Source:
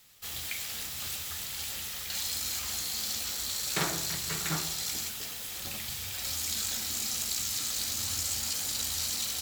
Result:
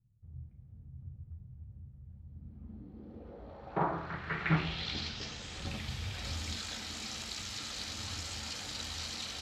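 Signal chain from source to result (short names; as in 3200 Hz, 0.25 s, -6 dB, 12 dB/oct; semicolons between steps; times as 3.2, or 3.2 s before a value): 4.49–6.56 low shelf 310 Hz +9 dB; low-pass sweep 120 Hz -> 11000 Hz, 2.23–5.75; air absorption 190 m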